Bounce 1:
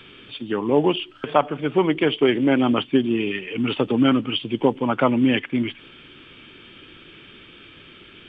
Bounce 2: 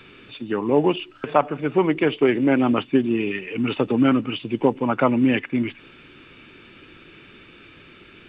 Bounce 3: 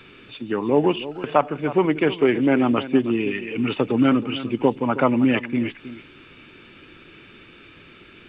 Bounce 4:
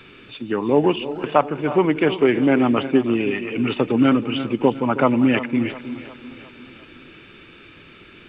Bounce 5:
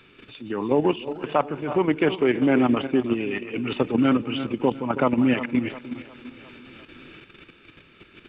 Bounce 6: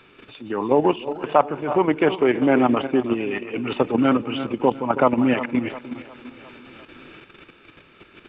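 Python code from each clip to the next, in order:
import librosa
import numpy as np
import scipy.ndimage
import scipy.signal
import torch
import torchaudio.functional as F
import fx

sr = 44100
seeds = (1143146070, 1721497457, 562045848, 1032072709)

y1 = fx.notch(x, sr, hz=3200.0, q=5.6)
y2 = y1 + 10.0 ** (-14.5 / 20.0) * np.pad(y1, (int(317 * sr / 1000.0), 0))[:len(y1)]
y3 = fx.echo_feedback(y2, sr, ms=354, feedback_pct=53, wet_db=-16)
y3 = y3 * librosa.db_to_amplitude(1.5)
y4 = fx.level_steps(y3, sr, step_db=9)
y5 = fx.peak_eq(y4, sr, hz=800.0, db=7.5, octaves=1.9)
y5 = y5 * librosa.db_to_amplitude(-1.0)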